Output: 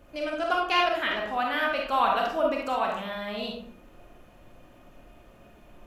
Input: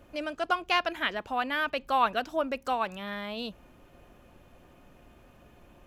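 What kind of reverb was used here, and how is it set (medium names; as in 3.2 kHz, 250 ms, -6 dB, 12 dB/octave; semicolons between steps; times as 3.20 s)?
algorithmic reverb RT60 0.67 s, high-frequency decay 0.55×, pre-delay 5 ms, DRR -1.5 dB; trim -1 dB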